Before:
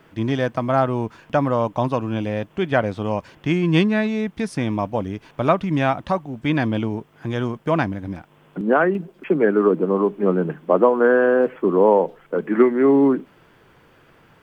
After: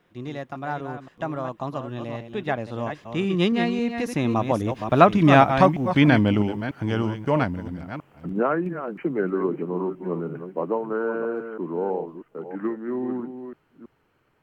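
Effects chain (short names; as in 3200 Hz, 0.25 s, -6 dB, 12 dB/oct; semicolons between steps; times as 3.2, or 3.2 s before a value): reverse delay 0.298 s, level -8.5 dB; Doppler pass-by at 5.55, 32 m/s, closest 26 m; gain +5 dB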